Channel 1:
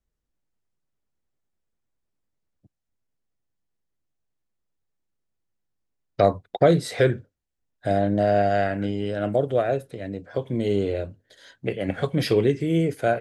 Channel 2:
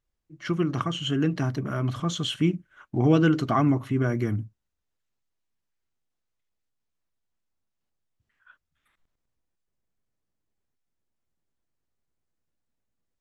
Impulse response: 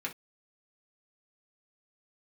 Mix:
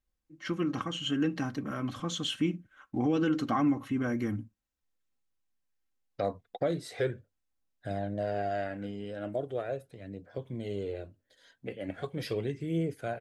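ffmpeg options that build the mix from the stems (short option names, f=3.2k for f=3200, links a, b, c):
-filter_complex "[0:a]aphaser=in_gain=1:out_gain=1:delay=4.5:decay=0.35:speed=0.39:type=triangular,volume=-12dB[a];[1:a]aecho=1:1:3.8:0.55,volume=-5.5dB,asplit=2[b][c];[c]volume=-15dB[d];[2:a]atrim=start_sample=2205[e];[d][e]afir=irnorm=-1:irlink=0[f];[a][b][f]amix=inputs=3:normalize=0,alimiter=limit=-19dB:level=0:latency=1:release=128"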